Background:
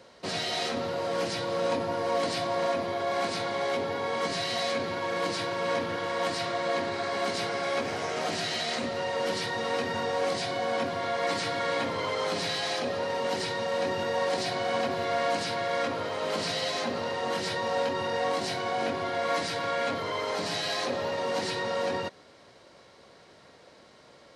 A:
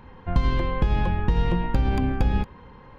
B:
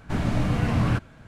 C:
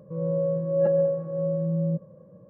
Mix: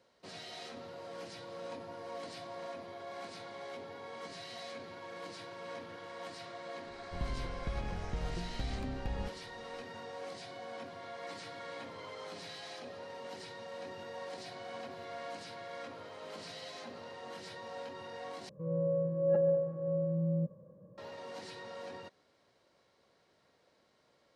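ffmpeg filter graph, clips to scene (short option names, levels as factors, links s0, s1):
-filter_complex "[0:a]volume=0.158,asplit=2[s0][s1];[s0]atrim=end=18.494[s2];[3:a]atrim=end=2.49,asetpts=PTS-STARTPTS,volume=0.473[s3];[s1]atrim=start=20.976[s4];[1:a]atrim=end=2.98,asetpts=PTS-STARTPTS,volume=0.15,afade=t=in:d=0.004:c=hsin,afade=t=out:st=2.976:d=0.004:c=hsin,adelay=6850[s5];[s2][s3]acrossfade=d=0.004:c1=hsin:c2=hsin[s6];[s6][s4]acrossfade=d=0.004:c1=hsin:c2=hsin[s7];[s7][s5]amix=inputs=2:normalize=0"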